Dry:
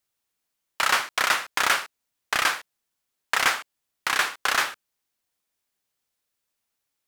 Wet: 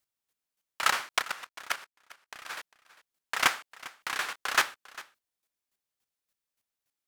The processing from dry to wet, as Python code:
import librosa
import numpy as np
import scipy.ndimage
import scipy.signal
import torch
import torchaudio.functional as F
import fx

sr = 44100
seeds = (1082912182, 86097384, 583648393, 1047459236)

y = fx.level_steps(x, sr, step_db=19, at=(1.21, 2.49), fade=0.02)
y = fx.chopper(y, sr, hz=3.5, depth_pct=65, duty_pct=15)
y = y + 10.0 ** (-19.5 / 20.0) * np.pad(y, (int(400 * sr / 1000.0), 0))[:len(y)]